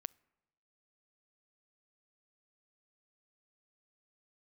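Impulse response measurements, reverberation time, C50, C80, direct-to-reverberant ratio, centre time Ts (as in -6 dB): no single decay rate, 26.5 dB, 29.5 dB, 24.0 dB, 1 ms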